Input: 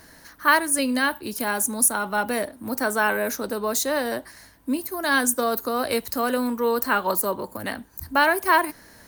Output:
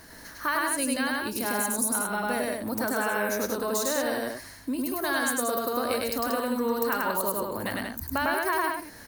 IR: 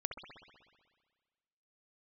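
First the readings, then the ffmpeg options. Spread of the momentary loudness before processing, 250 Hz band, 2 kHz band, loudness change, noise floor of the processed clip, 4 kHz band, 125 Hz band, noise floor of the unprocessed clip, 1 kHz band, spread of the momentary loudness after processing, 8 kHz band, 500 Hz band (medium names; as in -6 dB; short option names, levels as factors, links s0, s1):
10 LU, -3.0 dB, -5.5 dB, -4.5 dB, -46 dBFS, -4.0 dB, -0.5 dB, -51 dBFS, -5.0 dB, 6 LU, -4.5 dB, -3.5 dB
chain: -filter_complex "[0:a]acompressor=threshold=0.0316:ratio=2.5,asplit=2[s0][s1];[s1]aecho=0:1:102|183.7:0.891|0.562[s2];[s0][s2]amix=inputs=2:normalize=0"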